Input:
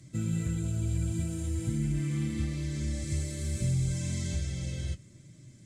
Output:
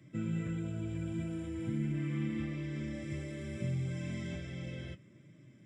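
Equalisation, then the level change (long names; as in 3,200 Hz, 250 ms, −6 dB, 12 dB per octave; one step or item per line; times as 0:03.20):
Savitzky-Golay smoothing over 25 samples
high-pass filter 180 Hz 12 dB per octave
notch filter 750 Hz, Q 12
0.0 dB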